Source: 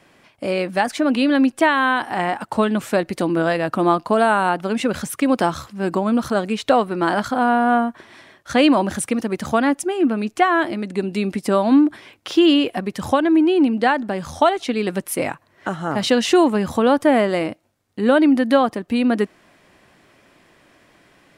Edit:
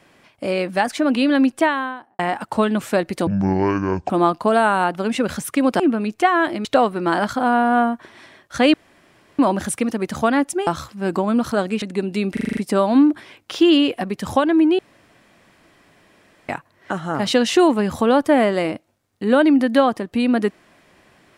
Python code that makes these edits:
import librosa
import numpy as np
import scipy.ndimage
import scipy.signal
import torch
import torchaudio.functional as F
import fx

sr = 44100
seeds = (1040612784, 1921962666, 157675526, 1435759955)

y = fx.studio_fade_out(x, sr, start_s=1.51, length_s=0.68)
y = fx.edit(y, sr, fx.speed_span(start_s=3.27, length_s=0.48, speed=0.58),
    fx.swap(start_s=5.45, length_s=1.15, other_s=9.97, other_length_s=0.85),
    fx.insert_room_tone(at_s=8.69, length_s=0.65),
    fx.stutter(start_s=11.33, slice_s=0.04, count=7),
    fx.room_tone_fill(start_s=13.55, length_s=1.7), tone=tone)